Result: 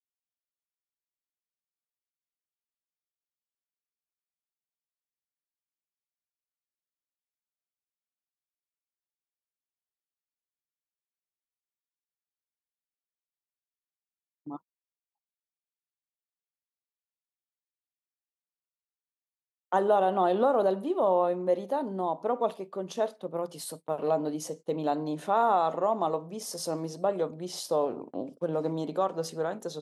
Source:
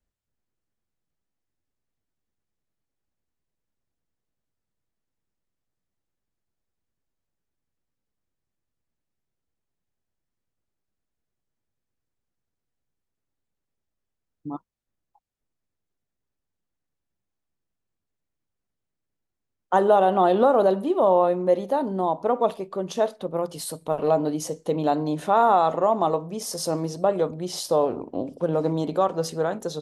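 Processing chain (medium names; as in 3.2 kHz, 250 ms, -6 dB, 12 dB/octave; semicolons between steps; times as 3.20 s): gate -37 dBFS, range -24 dB; high-pass 150 Hz; trim -6 dB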